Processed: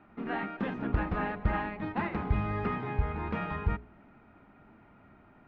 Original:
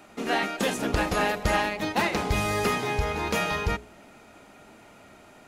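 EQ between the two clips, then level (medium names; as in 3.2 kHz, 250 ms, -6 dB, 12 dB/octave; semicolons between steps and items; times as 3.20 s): low-pass 1.4 kHz 12 dB/octave; distance through air 210 m; peaking EQ 550 Hz -11 dB 1.5 oct; 0.0 dB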